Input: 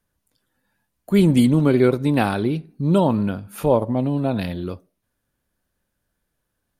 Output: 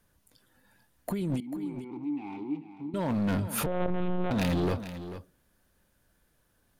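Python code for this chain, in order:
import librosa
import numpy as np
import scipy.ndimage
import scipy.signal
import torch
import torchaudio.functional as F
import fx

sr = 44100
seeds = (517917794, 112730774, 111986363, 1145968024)

y = fx.over_compress(x, sr, threshold_db=-25.0, ratio=-1.0)
y = np.clip(10.0 ** (25.0 / 20.0) * y, -1.0, 1.0) / 10.0 ** (25.0 / 20.0)
y = fx.vowel_filter(y, sr, vowel='u', at=(1.4, 2.94))
y = y + 10.0 ** (-12.0 / 20.0) * np.pad(y, (int(442 * sr / 1000.0), 0))[:len(y)]
y = fx.lpc_monotone(y, sr, seeds[0], pitch_hz=180.0, order=8, at=(3.66, 4.31))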